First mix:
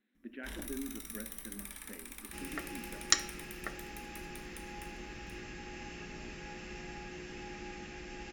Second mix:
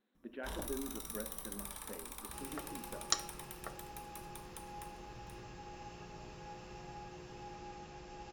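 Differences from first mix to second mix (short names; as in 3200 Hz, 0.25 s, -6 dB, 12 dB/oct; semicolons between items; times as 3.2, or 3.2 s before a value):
second sound -7.0 dB; master: add graphic EQ 125/250/500/1000/2000/4000 Hz +10/-7/+6/+10/-9/+3 dB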